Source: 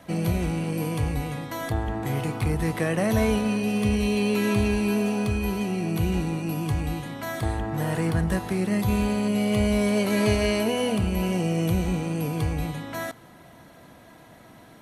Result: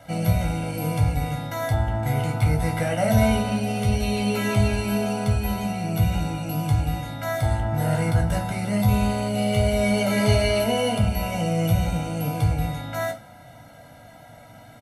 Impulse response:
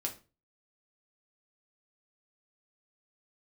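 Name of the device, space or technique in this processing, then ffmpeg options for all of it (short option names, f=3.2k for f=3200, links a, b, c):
microphone above a desk: -filter_complex "[0:a]aecho=1:1:1.4:0.86[a];[1:a]atrim=start_sample=2205[b];[a][b]afir=irnorm=-1:irlink=0,volume=-1dB"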